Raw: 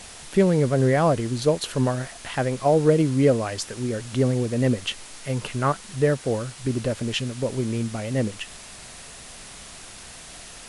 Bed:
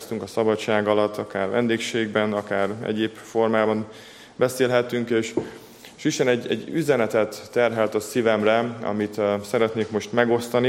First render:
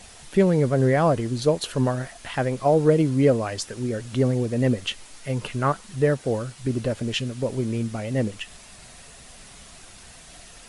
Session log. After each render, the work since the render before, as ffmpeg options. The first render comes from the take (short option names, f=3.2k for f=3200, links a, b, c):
-af "afftdn=nr=6:nf=-42"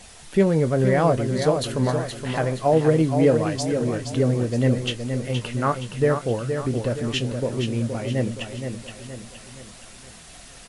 -filter_complex "[0:a]asplit=2[a][b];[b]adelay=25,volume=-13dB[c];[a][c]amix=inputs=2:normalize=0,asplit=2[d][e];[e]aecho=0:1:470|940|1410|1880|2350:0.447|0.205|0.0945|0.0435|0.02[f];[d][f]amix=inputs=2:normalize=0"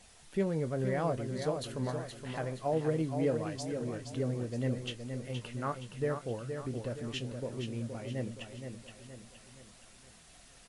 -af "volume=-13dB"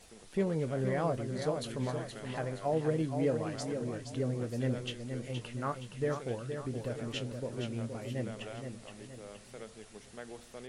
-filter_complex "[1:a]volume=-27dB[a];[0:a][a]amix=inputs=2:normalize=0"